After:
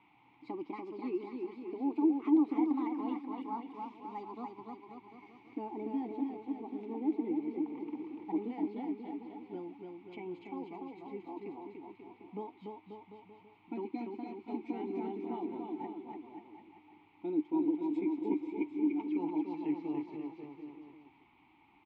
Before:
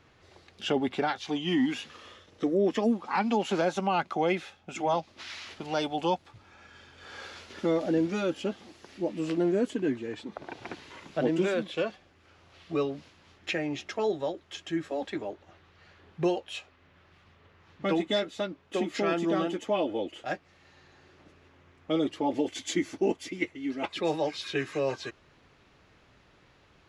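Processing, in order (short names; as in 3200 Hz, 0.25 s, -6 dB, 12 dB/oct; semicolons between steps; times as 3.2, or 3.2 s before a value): speed glide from 142% -> 104%; bouncing-ball echo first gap 0.29 s, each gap 0.85×, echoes 5; band noise 650–3600 Hz -48 dBFS; vowel filter u; tilt -3.5 dB/oct; gain -2.5 dB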